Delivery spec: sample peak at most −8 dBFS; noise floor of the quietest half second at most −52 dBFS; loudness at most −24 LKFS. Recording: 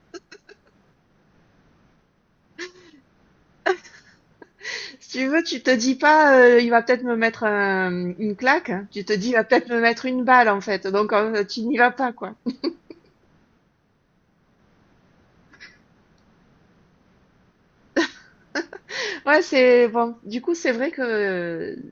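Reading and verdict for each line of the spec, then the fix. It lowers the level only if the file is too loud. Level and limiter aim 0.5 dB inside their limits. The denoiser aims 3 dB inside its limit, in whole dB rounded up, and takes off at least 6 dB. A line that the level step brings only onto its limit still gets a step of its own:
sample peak −3.0 dBFS: out of spec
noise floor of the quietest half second −64 dBFS: in spec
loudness −20.5 LKFS: out of spec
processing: level −4 dB
brickwall limiter −8.5 dBFS

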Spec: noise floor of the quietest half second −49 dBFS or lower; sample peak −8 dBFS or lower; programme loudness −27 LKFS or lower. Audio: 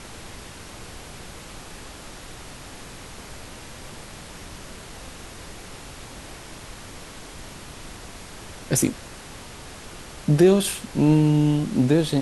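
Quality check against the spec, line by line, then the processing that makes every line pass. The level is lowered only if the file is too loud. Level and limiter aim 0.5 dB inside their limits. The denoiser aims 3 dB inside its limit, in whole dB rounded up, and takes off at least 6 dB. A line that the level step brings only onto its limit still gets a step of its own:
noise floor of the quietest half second −40 dBFS: out of spec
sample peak −5.5 dBFS: out of spec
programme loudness −20.5 LKFS: out of spec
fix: broadband denoise 6 dB, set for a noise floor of −40 dBFS
level −7 dB

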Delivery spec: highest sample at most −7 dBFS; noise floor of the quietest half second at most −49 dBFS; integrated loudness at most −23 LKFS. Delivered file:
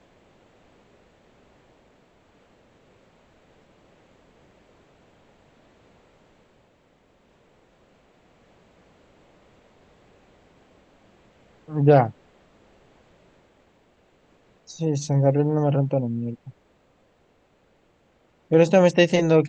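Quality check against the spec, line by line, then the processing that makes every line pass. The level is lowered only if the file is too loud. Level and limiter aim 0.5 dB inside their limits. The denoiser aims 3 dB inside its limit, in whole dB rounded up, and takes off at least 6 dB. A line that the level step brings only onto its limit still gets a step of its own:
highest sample −3.5 dBFS: out of spec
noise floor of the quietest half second −62 dBFS: in spec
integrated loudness −20.5 LKFS: out of spec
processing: level −3 dB
brickwall limiter −7.5 dBFS

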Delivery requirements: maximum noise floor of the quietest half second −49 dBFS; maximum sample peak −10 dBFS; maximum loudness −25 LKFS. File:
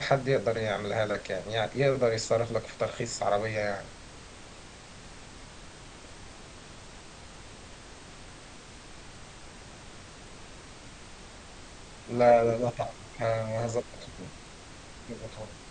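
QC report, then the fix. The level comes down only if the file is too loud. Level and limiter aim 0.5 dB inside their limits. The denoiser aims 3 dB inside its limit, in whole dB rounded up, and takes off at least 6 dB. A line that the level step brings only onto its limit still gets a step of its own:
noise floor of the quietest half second −48 dBFS: out of spec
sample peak −9.5 dBFS: out of spec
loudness −29.0 LKFS: in spec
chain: broadband denoise 6 dB, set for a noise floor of −48 dBFS
brickwall limiter −10.5 dBFS

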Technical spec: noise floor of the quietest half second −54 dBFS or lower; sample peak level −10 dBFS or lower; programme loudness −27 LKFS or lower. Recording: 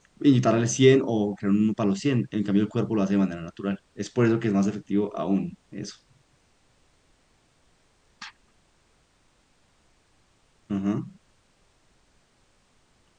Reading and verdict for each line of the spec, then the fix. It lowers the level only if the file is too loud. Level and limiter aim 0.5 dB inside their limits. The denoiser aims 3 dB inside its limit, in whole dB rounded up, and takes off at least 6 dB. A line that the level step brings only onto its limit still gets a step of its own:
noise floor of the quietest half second −64 dBFS: in spec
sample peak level −5.0 dBFS: out of spec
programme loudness −24.5 LKFS: out of spec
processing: level −3 dB
brickwall limiter −10.5 dBFS

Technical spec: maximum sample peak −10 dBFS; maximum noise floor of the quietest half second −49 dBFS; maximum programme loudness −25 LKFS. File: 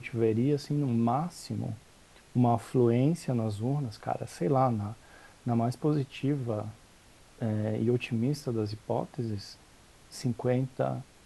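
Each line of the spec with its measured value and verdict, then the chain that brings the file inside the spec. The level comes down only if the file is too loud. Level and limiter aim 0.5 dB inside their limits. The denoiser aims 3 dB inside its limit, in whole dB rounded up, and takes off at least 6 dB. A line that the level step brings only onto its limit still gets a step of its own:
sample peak −13.5 dBFS: in spec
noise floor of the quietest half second −57 dBFS: in spec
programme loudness −30.5 LKFS: in spec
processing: no processing needed

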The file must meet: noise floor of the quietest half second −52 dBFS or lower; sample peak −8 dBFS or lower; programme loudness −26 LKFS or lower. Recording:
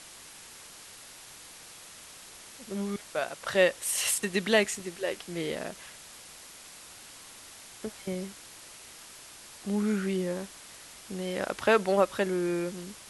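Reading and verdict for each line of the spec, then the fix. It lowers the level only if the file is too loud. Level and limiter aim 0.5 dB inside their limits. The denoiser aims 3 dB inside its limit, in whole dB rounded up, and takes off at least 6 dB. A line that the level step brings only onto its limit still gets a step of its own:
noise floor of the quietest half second −49 dBFS: out of spec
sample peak −10.0 dBFS: in spec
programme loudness −29.5 LKFS: in spec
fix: broadband denoise 6 dB, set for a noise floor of −49 dBFS

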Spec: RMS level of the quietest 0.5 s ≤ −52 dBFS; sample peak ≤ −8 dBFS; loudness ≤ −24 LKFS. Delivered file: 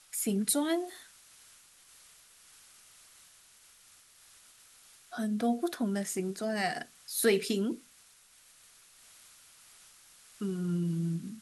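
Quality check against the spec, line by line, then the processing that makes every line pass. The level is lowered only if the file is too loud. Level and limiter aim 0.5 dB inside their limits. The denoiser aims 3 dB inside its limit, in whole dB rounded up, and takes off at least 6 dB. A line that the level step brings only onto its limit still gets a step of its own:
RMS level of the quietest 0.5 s −60 dBFS: in spec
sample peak −14.5 dBFS: in spec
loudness −32.0 LKFS: in spec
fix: no processing needed

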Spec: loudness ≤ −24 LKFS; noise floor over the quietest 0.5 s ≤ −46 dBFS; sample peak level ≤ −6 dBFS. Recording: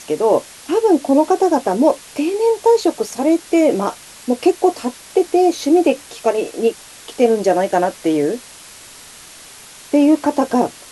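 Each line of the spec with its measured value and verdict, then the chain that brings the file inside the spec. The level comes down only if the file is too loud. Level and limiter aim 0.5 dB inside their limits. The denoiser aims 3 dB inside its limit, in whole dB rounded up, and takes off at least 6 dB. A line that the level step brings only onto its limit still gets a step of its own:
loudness −16.5 LKFS: out of spec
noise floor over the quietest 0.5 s −40 dBFS: out of spec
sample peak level −2.0 dBFS: out of spec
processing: level −8 dB

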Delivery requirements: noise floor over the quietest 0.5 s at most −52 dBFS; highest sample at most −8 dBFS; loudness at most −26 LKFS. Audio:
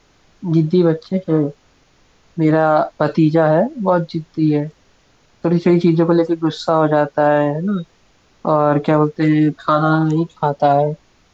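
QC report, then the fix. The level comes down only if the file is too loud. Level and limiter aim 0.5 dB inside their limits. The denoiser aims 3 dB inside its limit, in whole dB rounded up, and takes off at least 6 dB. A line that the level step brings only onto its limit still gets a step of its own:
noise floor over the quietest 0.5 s −55 dBFS: in spec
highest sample −4.5 dBFS: out of spec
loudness −16.5 LKFS: out of spec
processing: level −10 dB

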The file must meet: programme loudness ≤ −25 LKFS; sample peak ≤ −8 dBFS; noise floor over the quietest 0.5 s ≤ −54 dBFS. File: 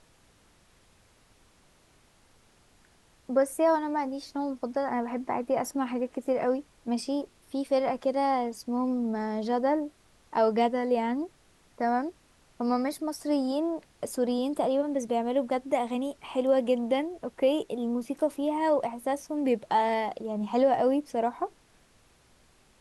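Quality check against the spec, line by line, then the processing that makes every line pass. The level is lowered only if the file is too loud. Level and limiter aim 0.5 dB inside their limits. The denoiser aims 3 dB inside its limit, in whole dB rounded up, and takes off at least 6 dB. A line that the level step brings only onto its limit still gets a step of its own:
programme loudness −29.0 LKFS: in spec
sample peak −13.0 dBFS: in spec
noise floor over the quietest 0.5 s −62 dBFS: in spec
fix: no processing needed

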